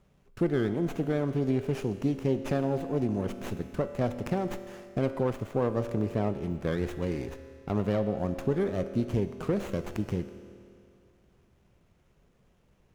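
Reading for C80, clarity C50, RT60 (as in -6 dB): 11.0 dB, 10.5 dB, 2.4 s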